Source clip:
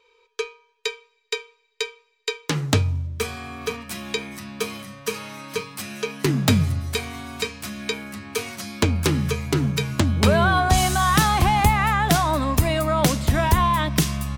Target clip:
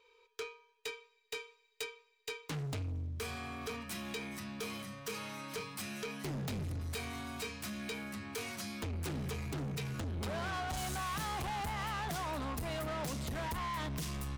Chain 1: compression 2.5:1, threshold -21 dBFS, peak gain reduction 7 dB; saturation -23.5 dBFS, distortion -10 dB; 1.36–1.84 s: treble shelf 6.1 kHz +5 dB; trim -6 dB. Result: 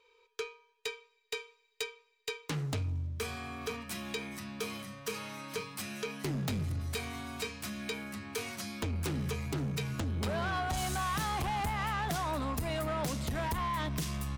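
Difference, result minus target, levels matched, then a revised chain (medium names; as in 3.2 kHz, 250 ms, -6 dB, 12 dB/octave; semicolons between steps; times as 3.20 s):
saturation: distortion -4 dB
compression 2.5:1, threshold -21 dBFS, peak gain reduction 7 dB; saturation -30 dBFS, distortion -6 dB; 1.36–1.84 s: treble shelf 6.1 kHz +5 dB; trim -6 dB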